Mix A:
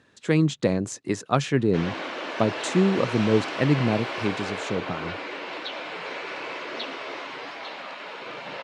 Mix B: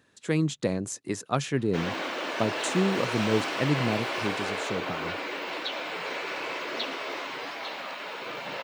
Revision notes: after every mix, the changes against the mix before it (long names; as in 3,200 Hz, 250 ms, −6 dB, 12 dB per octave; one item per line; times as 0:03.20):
speech −5.0 dB
master: remove high-frequency loss of the air 61 metres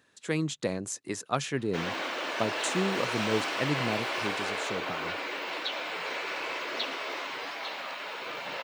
master: add low-shelf EQ 410 Hz −6.5 dB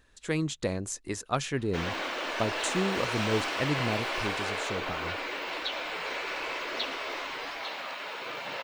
master: remove high-pass filter 120 Hz 24 dB per octave